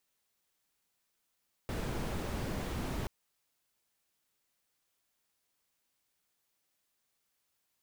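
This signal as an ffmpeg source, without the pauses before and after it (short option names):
-f lavfi -i "anoisesrc=c=brown:a=0.0741:d=1.38:r=44100:seed=1"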